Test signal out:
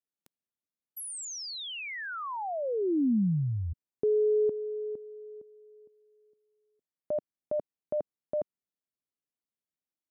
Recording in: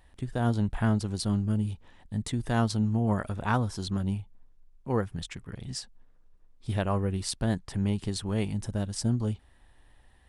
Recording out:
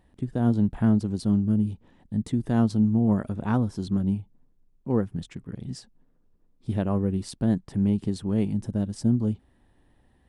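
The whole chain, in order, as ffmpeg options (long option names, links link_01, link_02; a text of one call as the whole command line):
ffmpeg -i in.wav -af "equalizer=frequency=230:width_type=o:width=2.7:gain=14.5,volume=-7.5dB" out.wav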